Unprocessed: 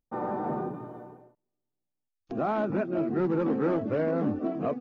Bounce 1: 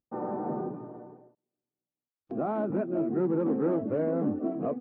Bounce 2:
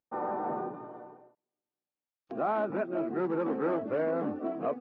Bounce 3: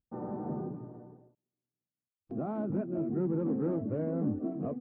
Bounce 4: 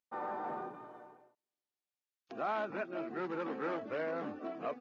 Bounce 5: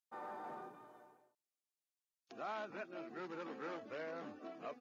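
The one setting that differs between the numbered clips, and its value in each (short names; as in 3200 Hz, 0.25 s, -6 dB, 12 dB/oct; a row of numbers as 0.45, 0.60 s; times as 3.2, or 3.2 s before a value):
band-pass, frequency: 320, 960, 110, 2900, 7400 Hz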